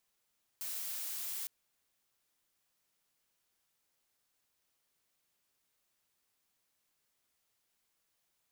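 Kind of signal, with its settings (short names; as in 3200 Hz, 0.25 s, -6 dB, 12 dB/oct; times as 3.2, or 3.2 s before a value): noise blue, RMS -40 dBFS 0.86 s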